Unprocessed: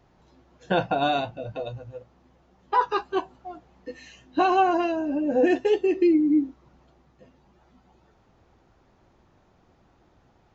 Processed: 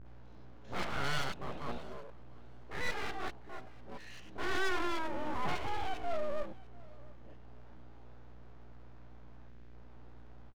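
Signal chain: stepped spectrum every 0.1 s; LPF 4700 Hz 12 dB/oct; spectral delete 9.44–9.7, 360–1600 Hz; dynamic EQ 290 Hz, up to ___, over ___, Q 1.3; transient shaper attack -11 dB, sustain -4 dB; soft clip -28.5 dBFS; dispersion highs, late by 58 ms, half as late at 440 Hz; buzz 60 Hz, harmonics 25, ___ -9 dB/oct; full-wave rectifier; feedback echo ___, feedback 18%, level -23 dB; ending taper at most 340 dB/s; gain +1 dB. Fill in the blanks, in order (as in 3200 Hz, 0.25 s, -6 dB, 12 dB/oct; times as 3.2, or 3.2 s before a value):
-7 dB, -37 dBFS, -50 dBFS, 0.696 s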